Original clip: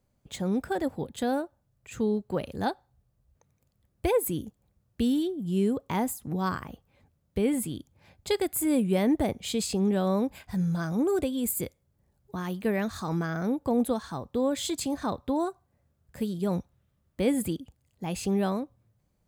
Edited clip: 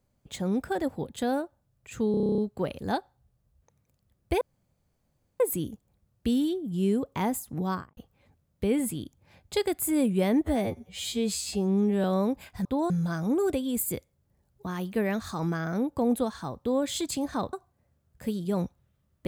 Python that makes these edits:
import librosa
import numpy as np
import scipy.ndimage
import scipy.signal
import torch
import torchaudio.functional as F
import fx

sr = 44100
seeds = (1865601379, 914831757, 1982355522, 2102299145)

y = fx.studio_fade_out(x, sr, start_s=6.39, length_s=0.32)
y = fx.edit(y, sr, fx.stutter(start_s=2.11, slice_s=0.03, count=10),
    fx.insert_room_tone(at_s=4.14, length_s=0.99),
    fx.stretch_span(start_s=9.18, length_s=0.8, factor=2.0),
    fx.move(start_s=15.22, length_s=0.25, to_s=10.59), tone=tone)